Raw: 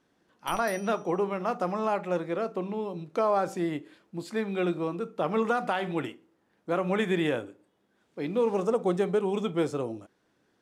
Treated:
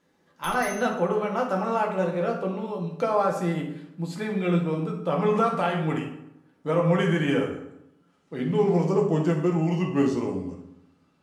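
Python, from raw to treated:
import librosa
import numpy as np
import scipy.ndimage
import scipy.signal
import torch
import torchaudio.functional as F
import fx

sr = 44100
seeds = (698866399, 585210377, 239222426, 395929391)

y = fx.speed_glide(x, sr, from_pct=109, to_pct=80)
y = fx.rev_fdn(y, sr, rt60_s=0.81, lf_ratio=1.2, hf_ratio=0.7, size_ms=35.0, drr_db=-0.5)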